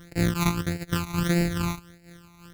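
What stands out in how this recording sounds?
a buzz of ramps at a fixed pitch in blocks of 256 samples; phasing stages 12, 1.6 Hz, lowest notch 530–1100 Hz; random flutter of the level

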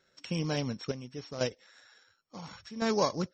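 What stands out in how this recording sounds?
a buzz of ramps at a fixed pitch in blocks of 8 samples; chopped level 0.71 Hz, depth 65%, duty 65%; MP3

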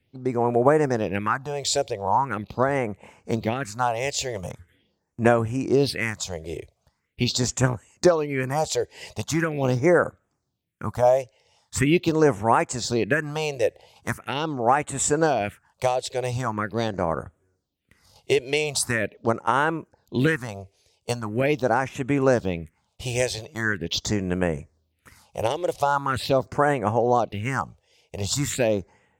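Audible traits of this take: phasing stages 4, 0.42 Hz, lowest notch 210–4600 Hz

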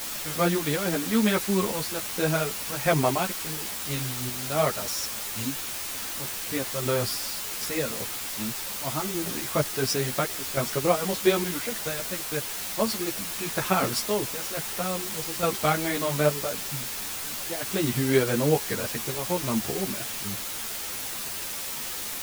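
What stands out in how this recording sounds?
random-step tremolo, depth 75%; a quantiser's noise floor 6-bit, dither triangular; a shimmering, thickened sound

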